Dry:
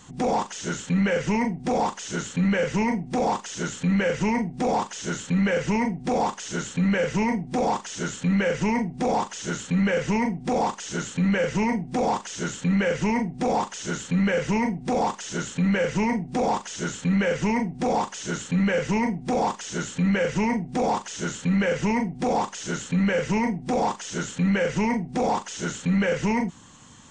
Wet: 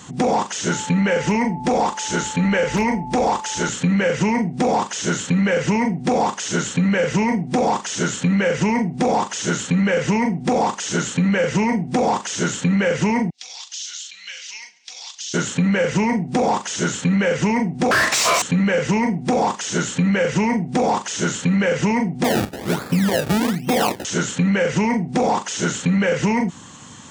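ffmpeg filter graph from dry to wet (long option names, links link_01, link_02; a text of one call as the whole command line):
ffmpeg -i in.wav -filter_complex "[0:a]asettb=1/sr,asplit=3[link_01][link_02][link_03];[link_01]atrim=end=0.714[link_04];[link_02]atrim=start=0.71:end=3.69,asetpts=PTS-STARTPTS,afade=type=in:duration=0.004:curve=qsin,afade=type=out:start_time=2.976:duration=0.004:curve=qsin,asubboost=boost=11.5:cutoff=52,aeval=exprs='val(0)+0.0112*sin(2*PI*870*n/s)':channel_layout=same,aeval=exprs='0.178*(abs(mod(val(0)/0.178+3,4)-2)-1)':channel_layout=same[link_05];[link_03]atrim=start=3.686[link_06];[link_04][link_05]acrossfade=duration=0.004:curve1=hsin:curve2=qsin[link_07];[link_07][link_06]acrossfade=duration=0.004:curve1=qsin:curve2=hsin,asettb=1/sr,asplit=3[link_08][link_09][link_10];[link_08]atrim=end=13.304[link_11];[link_09]atrim=start=13.3:end=15.34,asetpts=PTS-STARTPTS,afade=type=in:duration=0.004:curve=qsin,afade=type=out:start_time=2.036:duration=0.004:curve=qsin,asuperpass=centerf=4500:order=4:qfactor=1.4,aecho=1:1:139|278|417|556:0.075|0.0435|0.0252|0.0146,atrim=end_sample=89964[link_12];[link_10]atrim=start=15.336[link_13];[link_11][link_12]acrossfade=duration=0.004:curve1=hsin:curve2=qsin[link_14];[link_14][link_13]acrossfade=duration=0.004:curve1=qsin:curve2=hsin,asettb=1/sr,asplit=3[link_15][link_16][link_17];[link_15]atrim=end=17.914[link_18];[link_16]atrim=start=17.91:end=18.42,asetpts=PTS-STARTPTS,afade=type=in:duration=0.004:curve=qsin,afade=type=out:start_time=0.506:duration=0.004:curve=qsin,aeval=exprs='val(0)*sin(2*PI*850*n/s)':channel_layout=same,asplit=2[link_19][link_20];[link_20]highpass=frequency=720:poles=1,volume=28dB,asoftclip=type=tanh:threshold=-15.5dB[link_21];[link_19][link_21]amix=inputs=2:normalize=0,lowpass=frequency=6500:poles=1,volume=-6dB[link_22];[link_17]atrim=start=18.416[link_23];[link_18][link_22]acrossfade=duration=0.004:curve1=hsin:curve2=qsin[link_24];[link_24][link_23]acrossfade=duration=0.004:curve1=qsin:curve2=hsin,asettb=1/sr,asplit=3[link_25][link_26][link_27];[link_25]atrim=end=22.244[link_28];[link_26]atrim=start=22.24:end=24.05,asetpts=PTS-STARTPTS,afade=type=in:duration=0.004:curve=qsin,afade=type=out:start_time=1.806:duration=0.004:curve=qsin,lowpass=5200,acrusher=samples=29:mix=1:aa=0.000001:lfo=1:lforange=29:lforate=1.2[link_29];[link_27]atrim=start=24.046[link_30];[link_28][link_29]acrossfade=duration=0.004:curve1=hsin:curve2=qsin[link_31];[link_31][link_30]acrossfade=duration=0.004:curve1=qsin:curve2=hsin,highpass=85,acompressor=threshold=-24dB:ratio=6,volume=9dB" out.wav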